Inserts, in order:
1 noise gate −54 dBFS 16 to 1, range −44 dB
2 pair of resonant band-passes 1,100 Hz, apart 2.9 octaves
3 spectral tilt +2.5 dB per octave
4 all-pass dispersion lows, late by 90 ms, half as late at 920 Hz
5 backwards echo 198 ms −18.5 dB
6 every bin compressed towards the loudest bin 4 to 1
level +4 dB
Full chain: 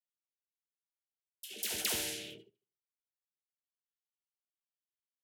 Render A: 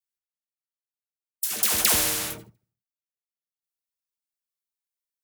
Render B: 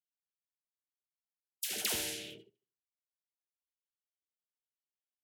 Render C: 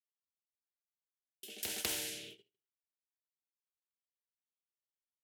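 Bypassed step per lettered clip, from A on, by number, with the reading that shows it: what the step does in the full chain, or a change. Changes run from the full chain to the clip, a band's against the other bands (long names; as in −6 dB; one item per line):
2, 1 kHz band +5.5 dB
5, change in momentary loudness spread −5 LU
4, change in crest factor +6.0 dB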